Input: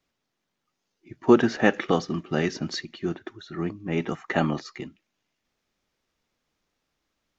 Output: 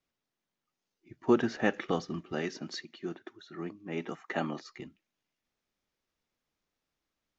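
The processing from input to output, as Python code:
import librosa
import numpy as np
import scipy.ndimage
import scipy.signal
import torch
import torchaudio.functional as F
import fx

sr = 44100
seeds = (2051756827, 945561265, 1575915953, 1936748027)

y = fx.highpass(x, sr, hz=200.0, slope=12, at=(2.32, 4.68))
y = y * 10.0 ** (-8.0 / 20.0)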